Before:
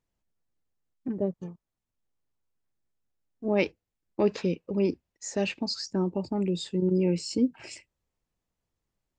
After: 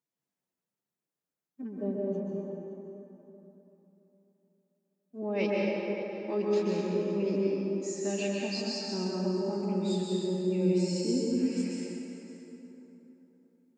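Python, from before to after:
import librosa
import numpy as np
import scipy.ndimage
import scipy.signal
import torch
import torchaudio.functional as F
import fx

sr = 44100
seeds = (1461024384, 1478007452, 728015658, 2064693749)

y = scipy.signal.sosfilt(scipy.signal.butter(4, 140.0, 'highpass', fs=sr, output='sos'), x)
y = fx.high_shelf(y, sr, hz=6100.0, db=5.5)
y = fx.stretch_vocoder(y, sr, factor=1.5)
y = y + 10.0 ** (-16.0 / 20.0) * np.pad(y, (int(568 * sr / 1000.0), 0))[:len(y)]
y = fx.rev_plate(y, sr, seeds[0], rt60_s=3.5, hf_ratio=0.5, predelay_ms=115, drr_db=-4.5)
y = F.gain(torch.from_numpy(y), -8.0).numpy()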